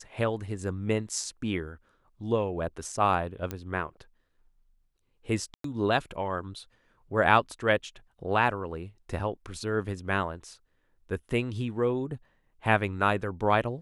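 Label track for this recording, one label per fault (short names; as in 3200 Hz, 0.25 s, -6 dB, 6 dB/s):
3.510000	3.510000	pop -18 dBFS
5.540000	5.640000	gap 0.103 s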